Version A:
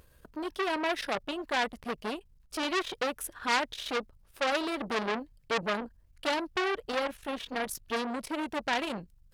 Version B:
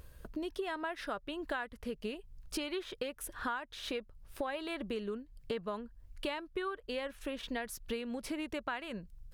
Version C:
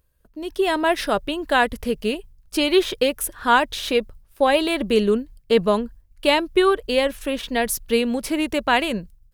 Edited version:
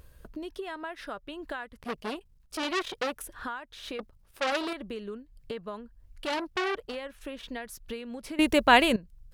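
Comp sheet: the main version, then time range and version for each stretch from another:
B
0:01.80–0:03.22: punch in from A
0:03.99–0:04.73: punch in from A
0:06.27–0:06.90: punch in from A, crossfade 0.16 s
0:08.39–0:08.96: punch in from C

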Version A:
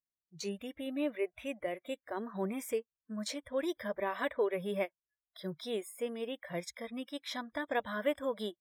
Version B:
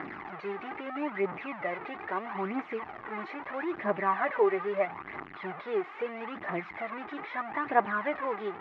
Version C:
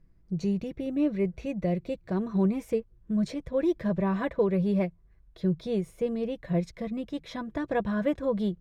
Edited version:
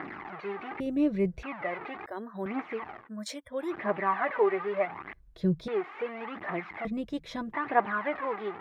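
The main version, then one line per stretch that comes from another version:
B
0:00.80–0:01.43: punch in from C
0:02.06–0:02.46: punch in from A
0:03.01–0:03.65: punch in from A, crossfade 0.16 s
0:05.13–0:05.68: punch in from C
0:06.85–0:07.53: punch in from C

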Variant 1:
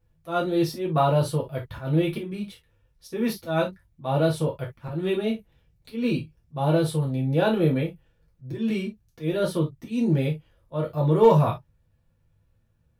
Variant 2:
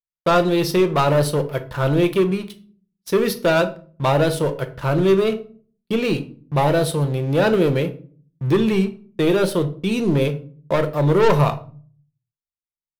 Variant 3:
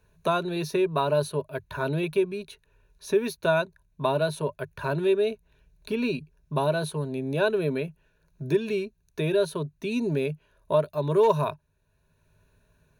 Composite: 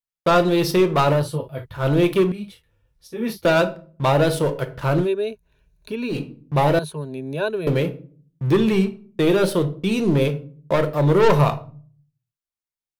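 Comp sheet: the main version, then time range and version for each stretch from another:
2
0:01.19–0:01.80: punch in from 1, crossfade 0.16 s
0:02.32–0:03.45: punch in from 1
0:05.04–0:06.13: punch in from 3, crossfade 0.10 s
0:06.79–0:07.67: punch in from 3

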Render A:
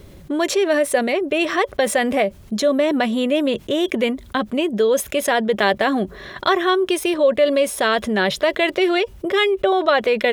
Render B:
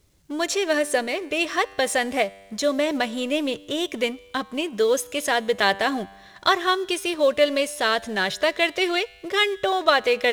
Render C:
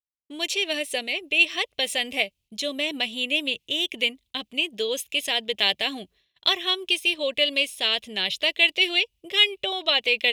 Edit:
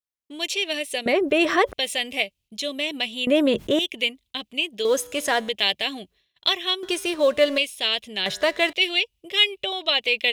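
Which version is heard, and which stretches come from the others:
C
0:01.06–0:01.73: punch in from A
0:03.27–0:03.79: punch in from A
0:04.85–0:05.49: punch in from B
0:06.83–0:07.58: punch in from B
0:08.26–0:08.73: punch in from B

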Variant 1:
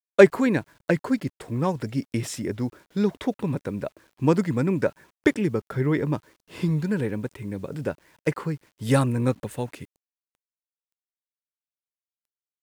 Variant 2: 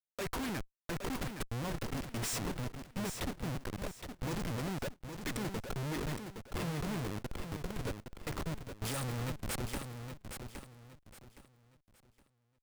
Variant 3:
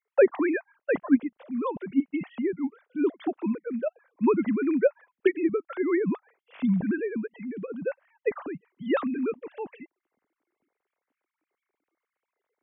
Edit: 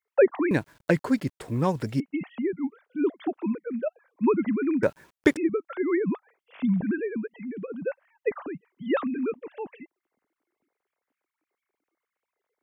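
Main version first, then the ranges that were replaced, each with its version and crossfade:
3
0:00.51–0:02.00: punch in from 1
0:04.83–0:05.37: punch in from 1
not used: 2

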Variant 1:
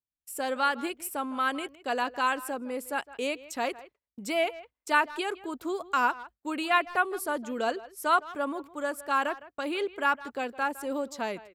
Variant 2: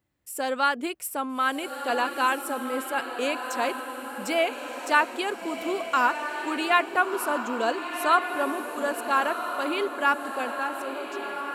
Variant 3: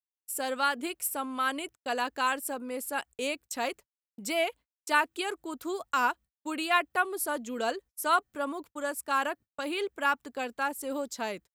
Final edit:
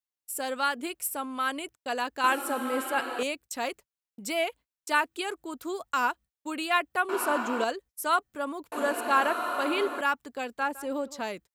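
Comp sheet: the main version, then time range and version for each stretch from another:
3
0:02.24–0:03.23: punch in from 2
0:07.09–0:07.64: punch in from 2
0:08.72–0:10.01: punch in from 2
0:10.60–0:11.21: punch in from 1

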